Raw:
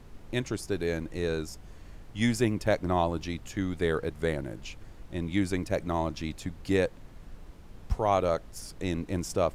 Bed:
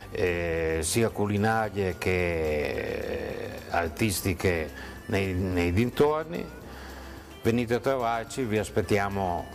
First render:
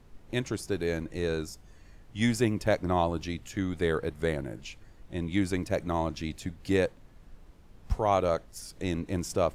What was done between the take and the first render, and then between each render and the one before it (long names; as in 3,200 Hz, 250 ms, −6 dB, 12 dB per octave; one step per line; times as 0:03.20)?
noise reduction from a noise print 6 dB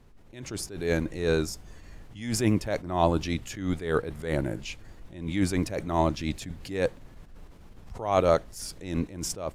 automatic gain control gain up to 7 dB
level that may rise only so fast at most 100 dB per second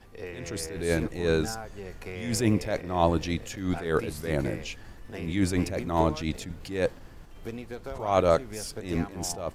mix in bed −13 dB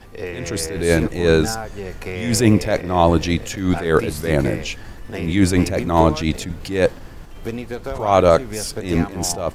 level +10 dB
brickwall limiter −2 dBFS, peak gain reduction 3 dB